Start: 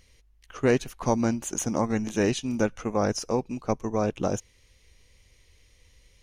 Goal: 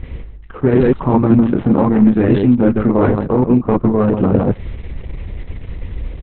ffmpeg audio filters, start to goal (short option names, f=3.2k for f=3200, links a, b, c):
-filter_complex "[0:a]asplit=2[a][b];[b]aecho=0:1:32.07|157.4:0.708|0.282[c];[a][c]amix=inputs=2:normalize=0,adynamicequalizer=threshold=0.00631:dfrequency=180:dqfactor=7.5:tfrequency=180:tqfactor=7.5:attack=5:release=100:ratio=0.375:range=2:mode=boostabove:tftype=bell,areverse,acompressor=threshold=-38dB:ratio=6,areverse,equalizer=f=650:t=o:w=0.38:g=-10.5,adynamicsmooth=sensitivity=2:basefreq=970,alimiter=level_in=34dB:limit=-1dB:release=50:level=0:latency=1,volume=-1.5dB" -ar 48000 -c:a libopus -b:a 6k